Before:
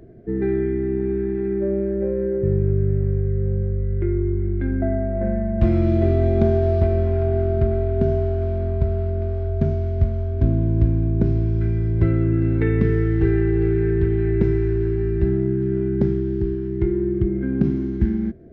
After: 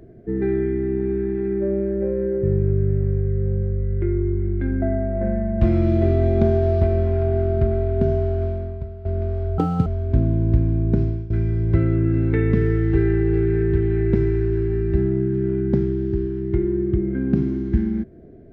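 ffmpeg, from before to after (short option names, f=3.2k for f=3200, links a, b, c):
-filter_complex "[0:a]asplit=5[a][b][c][d][e];[a]atrim=end=9.05,asetpts=PTS-STARTPTS,afade=t=out:st=8.45:d=0.6:c=qua:silence=0.199526[f];[b]atrim=start=9.05:end=9.584,asetpts=PTS-STARTPTS,afade=t=in:d=0.004:c=hsin:silence=0.199526[g];[c]atrim=start=9.58:end=10.14,asetpts=PTS-STARTPTS,asetrate=87759,aresample=44100,atrim=end_sample=12410,asetpts=PTS-STARTPTS[h];[d]atrim=start=10.136:end=11.58,asetpts=PTS-STARTPTS,afade=t=out:st=1.154:d=0.29:silence=0.133352[i];[e]atrim=start=11.58,asetpts=PTS-STARTPTS,afade=t=in:d=0.004:c=hsin:silence=0.133352[j];[f][g]concat=n=2:v=0:a=1[k];[k][h]acrossfade=d=0.004:c1=hsin:c2=hsin[l];[i][j]concat=n=2:v=0:a=1[m];[l][m]acrossfade=d=0.004:c1=hsin:c2=hsin"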